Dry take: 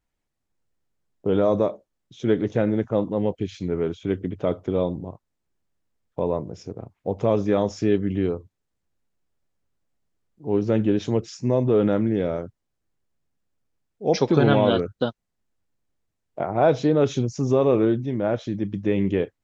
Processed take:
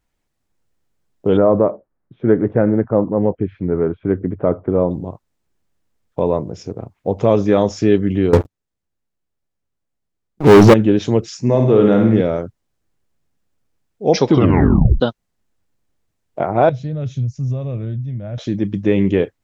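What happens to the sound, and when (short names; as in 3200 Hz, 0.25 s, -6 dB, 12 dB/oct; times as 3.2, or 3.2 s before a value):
1.37–4.91 LPF 1700 Hz 24 dB/oct
8.33–10.74 sample leveller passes 5
11.41–12.21 flutter echo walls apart 9.3 m, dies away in 0.65 s
14.29 tape stop 0.71 s
16.69–18.38 EQ curve 130 Hz 0 dB, 380 Hz -25 dB, 620 Hz -15 dB, 870 Hz -25 dB, 2000 Hz -16 dB
whole clip: maximiser +8 dB; gain -1 dB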